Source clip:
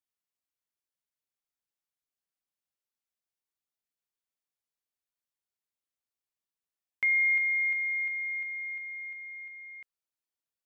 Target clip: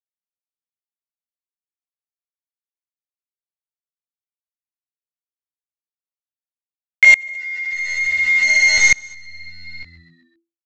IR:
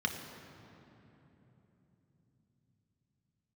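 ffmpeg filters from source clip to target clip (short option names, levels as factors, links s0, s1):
-filter_complex "[0:a]highpass=f=1400:w=0.5412,highpass=f=1400:w=1.3066,aemphasis=mode=production:type=cd,acrusher=bits=7:dc=4:mix=0:aa=0.000001,flanger=delay=16.5:depth=2.1:speed=1.2,asplit=2[s0][s1];[s1]asplit=4[s2][s3][s4][s5];[s2]adelay=128,afreqshift=-84,volume=0.158[s6];[s3]adelay=256,afreqshift=-168,volume=0.0668[s7];[s4]adelay=384,afreqshift=-252,volume=0.0279[s8];[s5]adelay=512,afreqshift=-336,volume=0.0117[s9];[s6][s7][s8][s9]amix=inputs=4:normalize=0[s10];[s0][s10]amix=inputs=2:normalize=0,aresample=16000,aresample=44100,alimiter=level_in=37.6:limit=0.891:release=50:level=0:latency=1,aeval=exprs='val(0)*pow(10,-26*if(lt(mod(-0.56*n/s,1),2*abs(-0.56)/1000),1-mod(-0.56*n/s,1)/(2*abs(-0.56)/1000),(mod(-0.56*n/s,1)-2*abs(-0.56)/1000)/(1-2*abs(-0.56)/1000))/20)':c=same"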